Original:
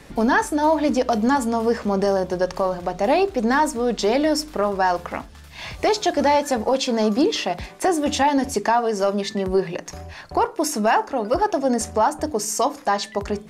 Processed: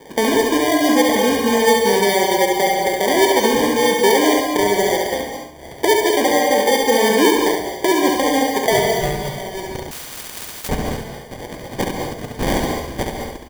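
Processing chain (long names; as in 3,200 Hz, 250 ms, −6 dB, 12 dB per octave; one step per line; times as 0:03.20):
dynamic equaliser 790 Hz, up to −6 dB, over −30 dBFS, Q 1.3
band-pass filter sweep 440 Hz → 5,600 Hz, 0:08.12–0:10.53
in parallel at 0 dB: downward compressor, threshold −30 dBFS, peak gain reduction 11.5 dB
on the sum: decimation without filtering 33×
on a send: repeating echo 69 ms, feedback 35%, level −4 dB
on the sum: reverb whose tail is shaped and stops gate 240 ms rising, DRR 3.5 dB
0:09.91–0:10.69: every bin compressed towards the loudest bin 10 to 1
level +5.5 dB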